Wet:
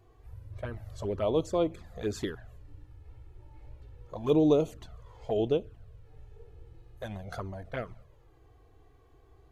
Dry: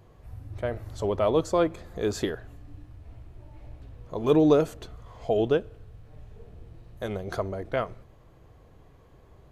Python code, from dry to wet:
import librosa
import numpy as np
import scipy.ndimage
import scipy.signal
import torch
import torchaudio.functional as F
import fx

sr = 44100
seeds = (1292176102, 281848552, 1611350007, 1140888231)

y = fx.env_flanger(x, sr, rest_ms=2.8, full_db=-20.0)
y = y * librosa.db_to_amplitude(-3.0)